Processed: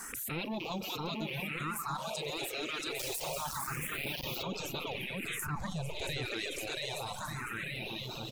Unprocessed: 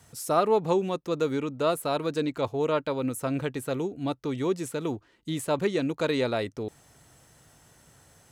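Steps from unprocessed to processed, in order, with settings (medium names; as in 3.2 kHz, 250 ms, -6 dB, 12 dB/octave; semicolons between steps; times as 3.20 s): rattle on loud lows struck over -41 dBFS, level -31 dBFS; saturation -13.5 dBFS, distortion -25 dB; spectral gate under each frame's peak -10 dB weak; on a send: bouncing-ball echo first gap 680 ms, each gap 0.75×, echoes 5; on the sum: Schroeder reverb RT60 3.6 s, combs from 30 ms, DRR 10 dB; 2.99–4.43 s: word length cut 6-bit, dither none; phase shifter stages 4, 0.27 Hz, lowest notch 160–1800 Hz; reverb removal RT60 0.95 s; 5.46–6.26 s: tone controls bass +13 dB, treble -4 dB; level flattener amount 70%; trim -6 dB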